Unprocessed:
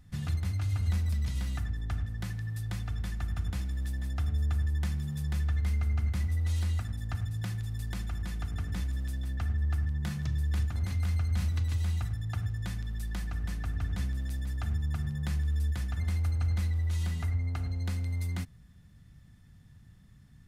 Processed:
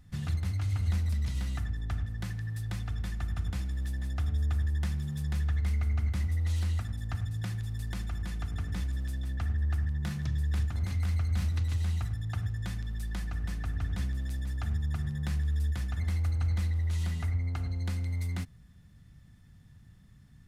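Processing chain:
highs frequency-modulated by the lows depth 0.15 ms

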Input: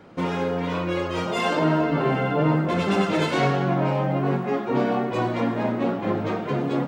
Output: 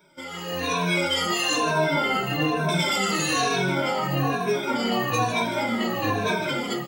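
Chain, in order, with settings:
rippled gain that drifts along the octave scale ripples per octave 1.6, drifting −1.1 Hz, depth 20 dB
first-order pre-emphasis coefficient 0.9
brickwall limiter −29.5 dBFS, peak gain reduction 9 dB
automatic gain control gain up to 12.5 dB
single-tap delay 154 ms −8.5 dB
barber-pole flanger 2.7 ms −2.2 Hz
level +4.5 dB

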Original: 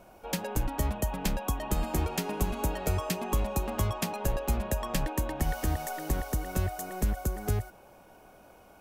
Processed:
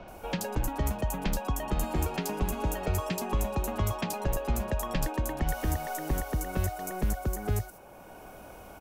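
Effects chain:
multiband delay without the direct sound lows, highs 80 ms, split 4,400 Hz
multiband upward and downward compressor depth 40%

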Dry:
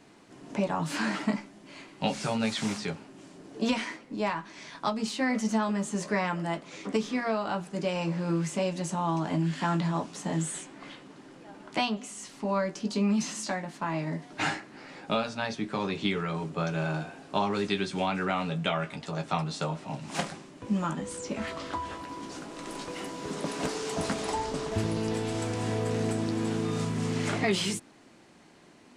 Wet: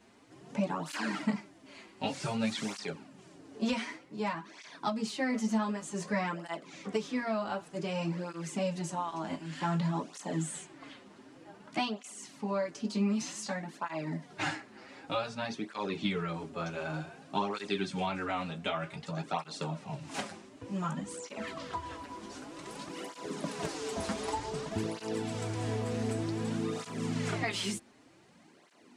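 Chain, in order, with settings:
through-zero flanger with one copy inverted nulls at 0.54 Hz, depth 7.2 ms
level −1.5 dB

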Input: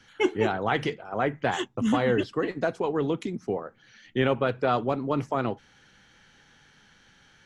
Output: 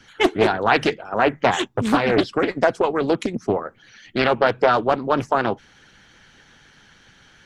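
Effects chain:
harmonic and percussive parts rebalanced percussive +9 dB
highs frequency-modulated by the lows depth 0.46 ms
level +1 dB

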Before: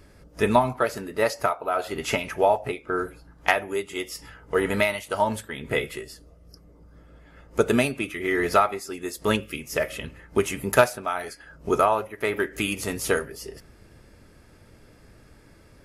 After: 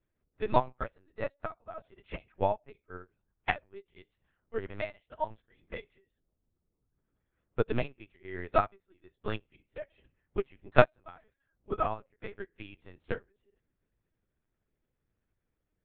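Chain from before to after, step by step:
linear-prediction vocoder at 8 kHz pitch kept
low-shelf EQ 120 Hz +4.5 dB
expander for the loud parts 2.5 to 1, over −32 dBFS
level −1 dB

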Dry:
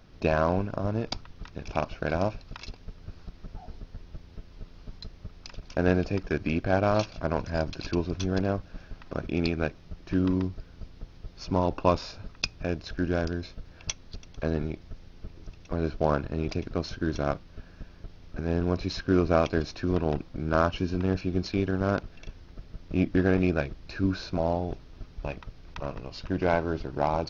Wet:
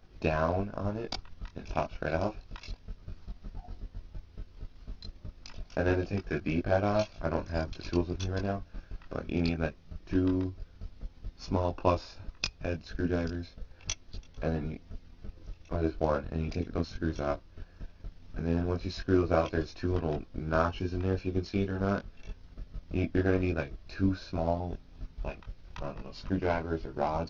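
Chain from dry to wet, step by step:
multi-voice chorus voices 6, 0.14 Hz, delay 22 ms, depth 3 ms
transient designer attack +3 dB, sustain −3 dB
level −1.5 dB

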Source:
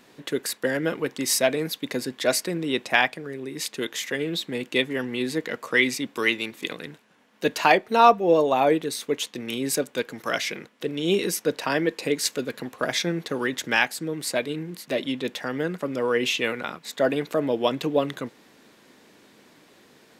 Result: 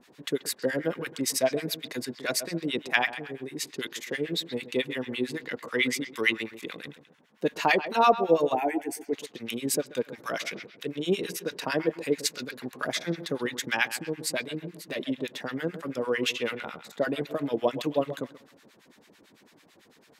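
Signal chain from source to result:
bucket-brigade delay 134 ms, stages 4,096, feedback 36%, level −13.5 dB
two-band tremolo in antiphase 9 Hz, depth 100%, crossover 1,000 Hz
0:08.55–0:09.13: phaser with its sweep stopped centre 790 Hz, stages 8

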